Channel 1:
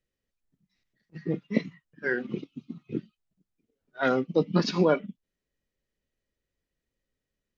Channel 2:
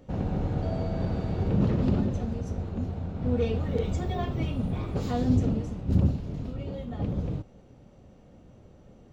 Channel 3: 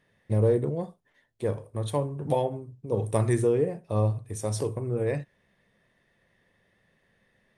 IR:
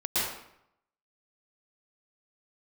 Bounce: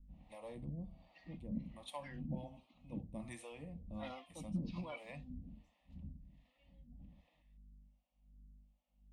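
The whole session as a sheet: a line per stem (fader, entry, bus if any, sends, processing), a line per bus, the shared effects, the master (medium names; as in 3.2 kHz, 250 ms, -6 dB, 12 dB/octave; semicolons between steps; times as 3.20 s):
-0.5 dB, 0.00 s, no send, peak limiter -18.5 dBFS, peak gain reduction 8 dB
-16.5 dB, 0.00 s, no send, hum 50 Hz, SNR 10 dB
-2.0 dB, 0.00 s, no send, none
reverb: none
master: FFT filter 110 Hz 0 dB, 430 Hz -15 dB, 2.6 kHz +2 dB, 6.1 kHz -13 dB; harmonic tremolo 1.3 Hz, depth 100%, crossover 470 Hz; static phaser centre 410 Hz, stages 6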